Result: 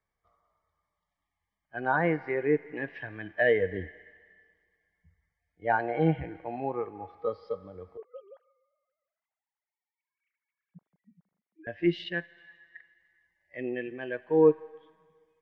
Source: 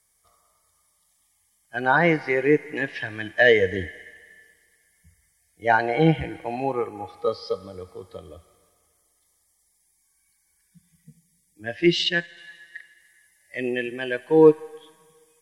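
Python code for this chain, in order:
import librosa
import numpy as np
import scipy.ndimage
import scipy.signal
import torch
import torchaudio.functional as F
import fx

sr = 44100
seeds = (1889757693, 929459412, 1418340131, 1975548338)

y = fx.sine_speech(x, sr, at=(7.97, 11.67))
y = scipy.signal.sosfilt(scipy.signal.butter(2, 1800.0, 'lowpass', fs=sr, output='sos'), y)
y = y * librosa.db_to_amplitude(-6.5)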